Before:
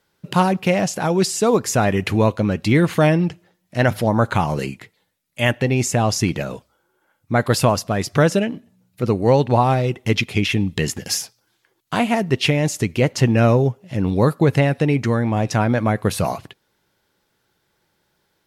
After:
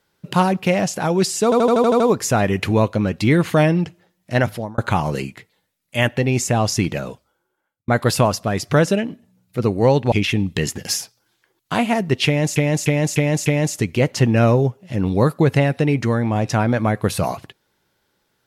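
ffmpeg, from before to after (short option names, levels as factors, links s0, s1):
-filter_complex "[0:a]asplit=15[s0][s1][s2][s3][s4][s5][s6][s7][s8][s9][s10][s11][s12][s13][s14];[s0]atrim=end=1.522[s15];[s1]atrim=start=1.438:end=1.522[s16];[s2]atrim=start=1.438:end=1.522[s17];[s3]atrim=start=1.438:end=1.522[s18];[s4]atrim=start=1.438:end=1.522[s19];[s5]atrim=start=1.438:end=1.522[s20];[s6]atrim=start=1.438:end=1.522[s21];[s7]atrim=start=1.438:end=4.22,asetpts=PTS-STARTPTS,afade=t=out:st=2.372:d=0.41[s22];[s8]atrim=start=4.22:end=7.32,asetpts=PTS-STARTPTS,afade=t=in:d=0.004:c=hsin,afade=t=out:st=2.24:d=0.86[s23];[s9]atrim=start=7.32:end=9.562,asetpts=PTS-STARTPTS,afade=t=in:d=0.004:c=hsin[s24];[s10]atrim=start=10.328:end=12.772[s25];[s11]atrim=start=12.468:end=12.772[s26];[s12]atrim=start=12.468:end=12.772[s27];[s13]atrim=start=12.468:end=12.772[s28];[s14]atrim=start=12.468[s29];[s15][s16]acrossfade=d=0.004:c1=hsin:c2=hsin[s30];[s30][s17]acrossfade=d=0.004:c1=hsin:c2=hsin[s31];[s31][s18]acrossfade=d=0.004:c1=hsin:c2=hsin[s32];[s32][s19]acrossfade=d=0.004:c1=hsin:c2=hsin[s33];[s33][s20]acrossfade=d=0.004:c1=hsin:c2=hsin[s34];[s34][s21]acrossfade=d=0.004:c1=hsin:c2=hsin[s35];[s22][s23][s24]concat=n=3:v=0:a=1[s36];[s35][s36]acrossfade=d=0.004:c1=hsin:c2=hsin[s37];[s37][s25]acrossfade=d=0.004:c1=hsin:c2=hsin[s38];[s38][s26]acrossfade=d=0.004:c1=hsin:c2=hsin[s39];[s39][s27]acrossfade=d=0.004:c1=hsin:c2=hsin[s40];[s40][s28]acrossfade=d=0.004:c1=hsin:c2=hsin[s41];[s41][s29]acrossfade=d=0.004:c1=hsin:c2=hsin"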